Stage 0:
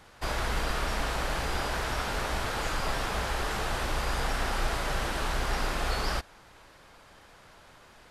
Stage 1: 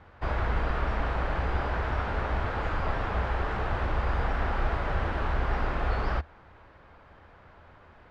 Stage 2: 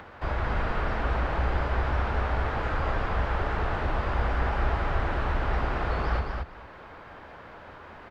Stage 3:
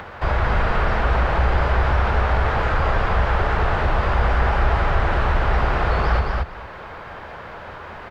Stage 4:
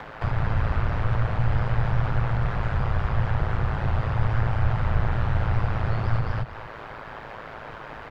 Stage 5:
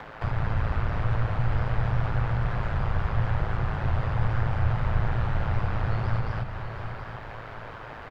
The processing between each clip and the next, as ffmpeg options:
-af "lowpass=1900,equalizer=f=78:t=o:w=0.7:g=9.5,volume=1.12"
-filter_complex "[0:a]acrossover=split=160[s0][s1];[s1]acompressor=mode=upward:threshold=0.0126:ratio=2.5[s2];[s0][s2]amix=inputs=2:normalize=0,aecho=1:1:224|448|672:0.631|0.0946|0.0142"
-filter_complex "[0:a]equalizer=f=280:t=o:w=0.5:g=-6.5,asplit=2[s0][s1];[s1]alimiter=limit=0.0708:level=0:latency=1,volume=0.794[s2];[s0][s2]amix=inputs=2:normalize=0,volume=1.78"
-filter_complex "[0:a]acrossover=split=160[s0][s1];[s1]acompressor=threshold=0.0355:ratio=4[s2];[s0][s2]amix=inputs=2:normalize=0,aeval=exprs='val(0)*sin(2*PI*55*n/s)':c=same"
-af "aecho=1:1:724|1448|2172|2896:0.316|0.114|0.041|0.0148,volume=0.75"

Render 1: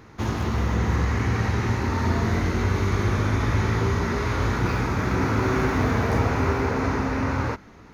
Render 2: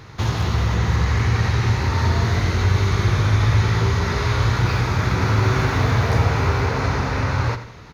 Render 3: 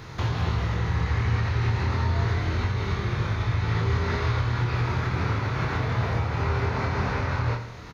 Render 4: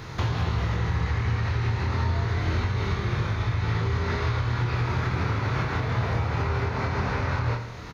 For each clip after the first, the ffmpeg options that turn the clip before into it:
-filter_complex "[0:a]equalizer=f=125:t=o:w=1:g=7,equalizer=f=250:t=o:w=1:g=-8,equalizer=f=4000:t=o:w=1:g=7,asplit=2[s0][s1];[s1]acompressor=threshold=0.0398:ratio=6,volume=0.841[s2];[s0][s2]amix=inputs=2:normalize=0,aecho=1:1:85|170|255|340:0.251|0.103|0.0422|0.0173"
-filter_complex "[0:a]acrossover=split=4600[s0][s1];[s1]acompressor=threshold=0.00251:ratio=4:attack=1:release=60[s2];[s0][s2]amix=inputs=2:normalize=0,alimiter=limit=0.126:level=0:latency=1:release=448,asplit=2[s3][s4];[s4]adelay=25,volume=0.631[s5];[s3][s5]amix=inputs=2:normalize=0"
-af "alimiter=limit=0.112:level=0:latency=1:release=350,volume=1.33"

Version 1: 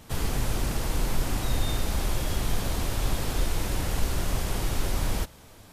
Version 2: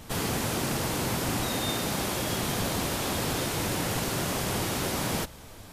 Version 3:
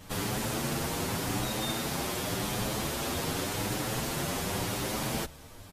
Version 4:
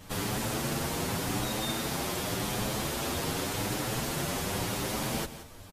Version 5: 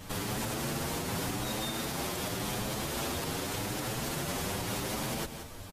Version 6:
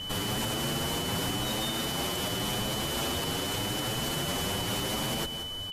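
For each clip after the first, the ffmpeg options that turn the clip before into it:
-af "afftfilt=real='re*lt(hypot(re,im),0.251)':imag='im*lt(hypot(re,im),0.251)':win_size=1024:overlap=0.75,volume=1.58"
-filter_complex "[0:a]asplit=2[s0][s1];[s1]adelay=8,afreqshift=0.88[s2];[s0][s2]amix=inputs=2:normalize=1"
-af "aecho=1:1:176:0.211"
-af "alimiter=level_in=1.58:limit=0.0631:level=0:latency=1:release=206,volume=0.631,volume=1.5"
-af "aeval=exprs='val(0)+0.0126*sin(2*PI*3000*n/s)':c=same,volume=1.33"

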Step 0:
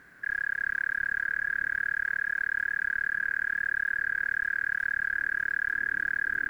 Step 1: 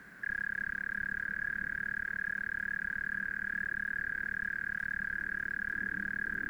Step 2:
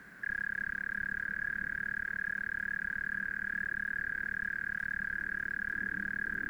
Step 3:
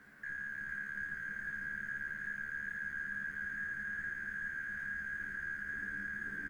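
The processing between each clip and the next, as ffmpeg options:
-filter_complex "[0:a]equalizer=f=200:t=o:w=0.24:g=13,acrossover=split=240|420[s0][s1][s2];[s2]alimiter=level_in=1.88:limit=0.0631:level=0:latency=1:release=35,volume=0.531[s3];[s0][s1][s3]amix=inputs=3:normalize=0,volume=1.19"
-af anull
-filter_complex "[0:a]aeval=exprs='0.0562*(cos(1*acos(clip(val(0)/0.0562,-1,1)))-cos(1*PI/2))+0.000794*(cos(8*acos(clip(val(0)/0.0562,-1,1)))-cos(8*PI/2))':c=same,asplit=2[s0][s1];[s1]adelay=14,volume=0.75[s2];[s0][s2]amix=inputs=2:normalize=0,aecho=1:1:453:0.631,volume=0.398"

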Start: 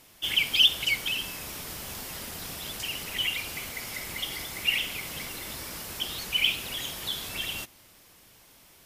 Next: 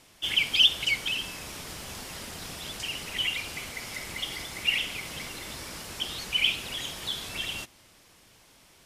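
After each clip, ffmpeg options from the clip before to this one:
-af "lowpass=9700"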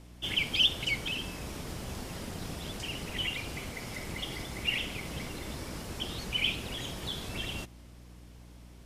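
-af "aeval=exprs='val(0)+0.00158*(sin(2*PI*60*n/s)+sin(2*PI*2*60*n/s)/2+sin(2*PI*3*60*n/s)/3+sin(2*PI*4*60*n/s)/4+sin(2*PI*5*60*n/s)/5)':c=same,tiltshelf=f=760:g=6"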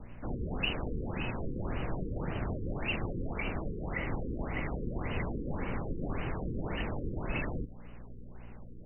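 -af "afreqshift=-66,afftfilt=real='re*lt(b*sr/1024,500*pow(3100/500,0.5+0.5*sin(2*PI*1.8*pts/sr)))':imag='im*lt(b*sr/1024,500*pow(3100/500,0.5+0.5*sin(2*PI*1.8*pts/sr)))':win_size=1024:overlap=0.75,volume=2"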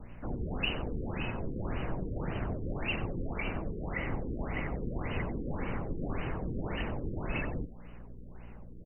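-af "aecho=1:1:92:0.158"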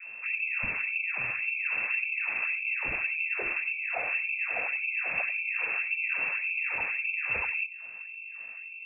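-af "lowpass=f=2300:t=q:w=0.5098,lowpass=f=2300:t=q:w=0.6013,lowpass=f=2300:t=q:w=0.9,lowpass=f=2300:t=q:w=2.563,afreqshift=-2700,volume=1.41"

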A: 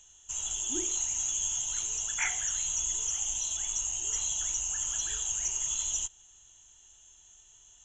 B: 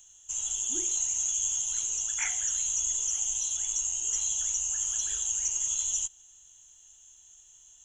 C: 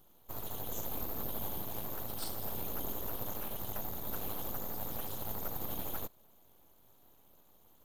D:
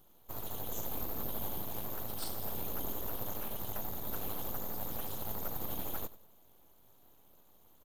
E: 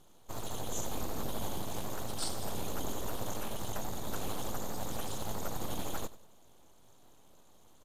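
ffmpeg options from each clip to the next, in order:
-af "aemphasis=mode=production:type=50kf,volume=0.562"
-af "aeval=exprs='abs(val(0))':c=same,volume=0.473"
-af "aecho=1:1:93|186|279:0.133|0.0413|0.0128"
-af "lowpass=f=7900:t=q:w=1.6,volume=1.58"

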